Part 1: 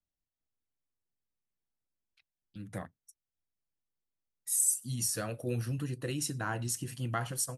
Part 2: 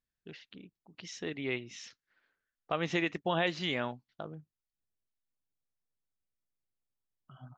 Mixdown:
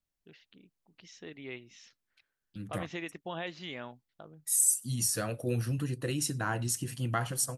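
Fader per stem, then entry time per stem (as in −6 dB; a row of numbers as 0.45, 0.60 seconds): +2.5, −8.0 decibels; 0.00, 0.00 seconds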